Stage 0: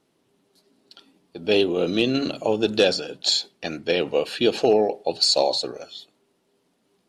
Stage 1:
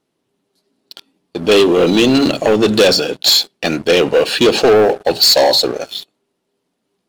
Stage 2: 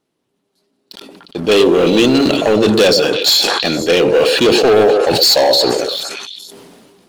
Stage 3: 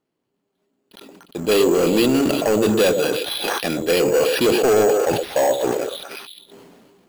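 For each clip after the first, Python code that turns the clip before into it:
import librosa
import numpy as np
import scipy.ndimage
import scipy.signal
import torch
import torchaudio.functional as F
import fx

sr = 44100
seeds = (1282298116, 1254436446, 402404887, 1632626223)

y1 = fx.leveller(x, sr, passes=3)
y1 = y1 * 10.0 ** (3.0 / 20.0)
y2 = fx.echo_stepped(y1, sr, ms=118, hz=440.0, octaves=1.4, feedback_pct=70, wet_db=-5.5)
y2 = fx.sustainer(y2, sr, db_per_s=27.0)
y2 = y2 * 10.0 ** (-1.0 / 20.0)
y3 = np.repeat(scipy.signal.resample_poly(y2, 1, 6), 6)[:len(y2)]
y3 = y3 * 10.0 ** (-5.5 / 20.0)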